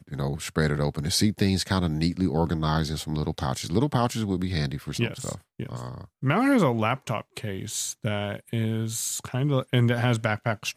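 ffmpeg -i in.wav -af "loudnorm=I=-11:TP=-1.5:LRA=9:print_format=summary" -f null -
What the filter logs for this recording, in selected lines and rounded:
Input Integrated:    -26.4 LUFS
Input True Peak:      -8.2 dBTP
Input LRA:             2.1 LU
Input Threshold:     -36.5 LUFS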